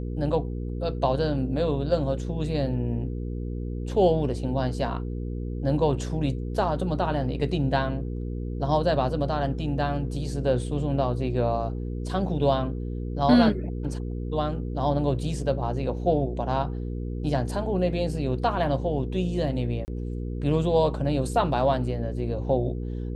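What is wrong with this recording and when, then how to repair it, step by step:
mains hum 60 Hz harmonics 8 −31 dBFS
0:19.85–0:19.88: drop-out 29 ms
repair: hum removal 60 Hz, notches 8
repair the gap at 0:19.85, 29 ms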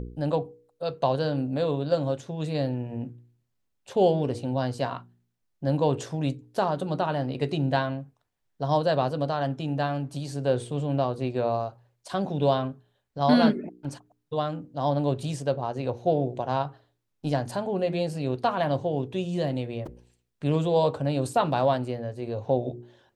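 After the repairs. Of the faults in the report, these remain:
none of them is left

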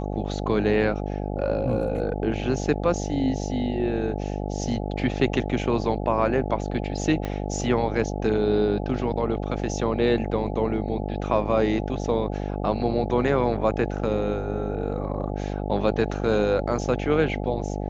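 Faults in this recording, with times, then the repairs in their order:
mains buzz 50 Hz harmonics 17 −29 dBFS
0:07.25: click −16 dBFS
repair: click removal
hum removal 50 Hz, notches 17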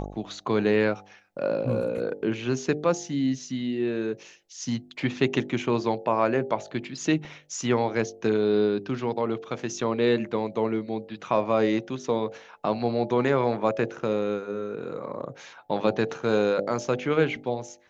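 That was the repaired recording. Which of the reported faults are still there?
0:07.25: click

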